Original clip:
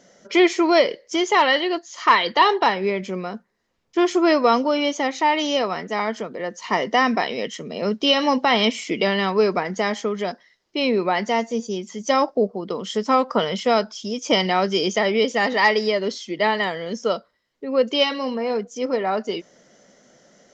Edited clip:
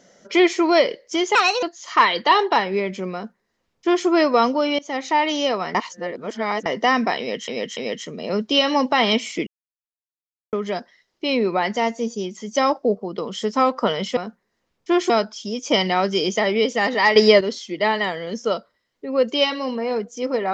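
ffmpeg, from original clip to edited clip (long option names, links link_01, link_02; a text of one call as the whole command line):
ffmpeg -i in.wav -filter_complex "[0:a]asplit=14[link_01][link_02][link_03][link_04][link_05][link_06][link_07][link_08][link_09][link_10][link_11][link_12][link_13][link_14];[link_01]atrim=end=1.354[link_15];[link_02]atrim=start=1.35:end=1.73,asetpts=PTS-STARTPTS,asetrate=60417,aresample=44100,atrim=end_sample=12232,asetpts=PTS-STARTPTS[link_16];[link_03]atrim=start=1.726:end=4.89,asetpts=PTS-STARTPTS,afade=type=out:start_time=3.16:duration=0.004:curve=hsin:silence=0.0707946[link_17];[link_04]atrim=start=4.89:end=5.852,asetpts=PTS-STARTPTS,afade=type=in:duration=0.35:curve=qsin:silence=0.0707946[link_18];[link_05]atrim=start=5.848:end=6.762,asetpts=PTS-STARTPTS,areverse[link_19];[link_06]atrim=start=6.758:end=7.582[link_20];[link_07]atrim=start=7.288:end=7.582[link_21];[link_08]atrim=start=7.288:end=8.99,asetpts=PTS-STARTPTS,afade=type=out:start_time=1.698:duration=0.004:curve=hsin[link_22];[link_09]atrim=start=8.99:end=10.05,asetpts=PTS-STARTPTS,volume=0[link_23];[link_10]atrim=start=10.05:end=13.692,asetpts=PTS-STARTPTS,afade=type=in:duration=0.004:curve=hsin[link_24];[link_11]atrim=start=3.238:end=4.172[link_25];[link_12]atrim=start=13.688:end=15.752[link_26];[link_13]atrim=start=15.748:end=16.002,asetpts=PTS-STARTPTS,volume=8.5dB[link_27];[link_14]atrim=start=15.998[link_28];[link_15][link_16]acrossfade=duration=0.004:curve1=hsin:curve2=hsin[link_29];[link_17][link_18]concat=n=2:v=0:a=1[link_30];[link_29][link_30]acrossfade=duration=0.004:curve1=hsin:curve2=hsin[link_31];[link_31][link_19]acrossfade=duration=0.004:curve1=hsin:curve2=hsin[link_32];[link_32][link_20]acrossfade=duration=0.004:curve1=hsin:curve2=hsin[link_33];[link_33][link_21]acrossfade=duration=0.004:curve1=hsin:curve2=hsin[link_34];[link_22][link_23][link_24]concat=n=3:v=0:a=1[link_35];[link_34][link_35]acrossfade=duration=0.004:curve1=hsin:curve2=hsin[link_36];[link_36][link_25]acrossfade=duration=0.004:curve1=hsin:curve2=hsin[link_37];[link_37][link_26]acrossfade=duration=0.004:curve1=hsin:curve2=hsin[link_38];[link_38][link_27]acrossfade=duration=0.004:curve1=hsin:curve2=hsin[link_39];[link_39][link_28]acrossfade=duration=0.004:curve1=hsin:curve2=hsin" out.wav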